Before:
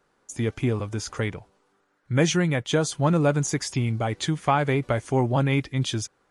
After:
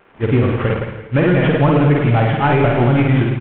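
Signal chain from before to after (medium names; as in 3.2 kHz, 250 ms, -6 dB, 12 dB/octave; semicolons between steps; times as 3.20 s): CVSD coder 16 kbps; in parallel at -2.5 dB: compression, threshold -32 dBFS, peak gain reduction 14.5 dB; on the sum: feedback delay 324 ms, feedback 35%, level -12 dB; granular stretch 0.54×, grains 183 ms; wow and flutter 25 cents; on a send: reverse bouncing-ball echo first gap 50 ms, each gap 1.1×, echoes 5; on the sum: loudness maximiser +15 dB; trim -4.5 dB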